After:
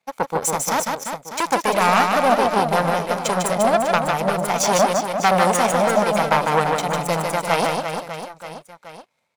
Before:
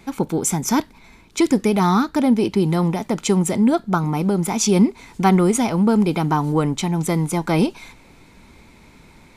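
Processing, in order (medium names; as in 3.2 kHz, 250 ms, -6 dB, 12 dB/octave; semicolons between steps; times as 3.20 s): in parallel at -10 dB: sine folder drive 11 dB, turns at -4 dBFS; on the sum: high-pass 110 Hz 24 dB/octave; power-law waveshaper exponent 2; resonant low shelf 430 Hz -7.5 dB, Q 3; reverse bouncing-ball echo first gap 150 ms, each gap 1.3×, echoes 5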